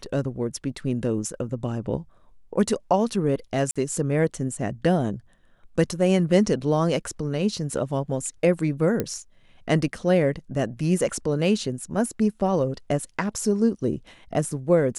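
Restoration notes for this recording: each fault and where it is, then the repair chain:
0:03.71–0:03.76: drop-out 46 ms
0:09.00: click −11 dBFS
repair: click removal
repair the gap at 0:03.71, 46 ms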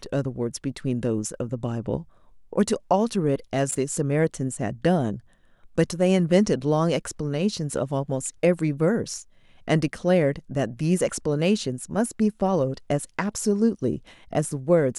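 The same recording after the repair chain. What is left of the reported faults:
none of them is left

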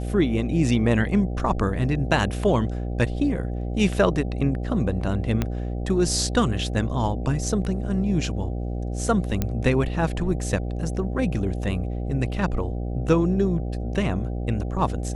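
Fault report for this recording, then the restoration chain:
mains buzz 60 Hz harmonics 13 −28 dBFS
0:05.42: click −10 dBFS
0:09.42: click −10 dBFS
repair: click removal
hum removal 60 Hz, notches 13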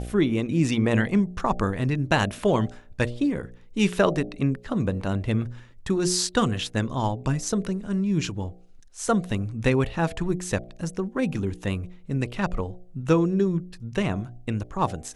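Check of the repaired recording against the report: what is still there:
0:05.42: click

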